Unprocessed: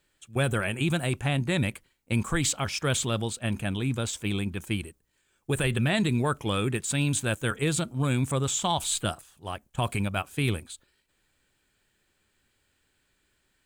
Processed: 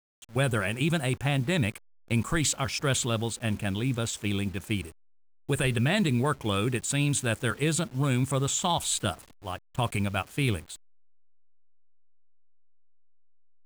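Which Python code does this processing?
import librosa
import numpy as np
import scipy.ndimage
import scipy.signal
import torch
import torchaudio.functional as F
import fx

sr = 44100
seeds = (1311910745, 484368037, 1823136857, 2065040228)

y = fx.delta_hold(x, sr, step_db=-45.5)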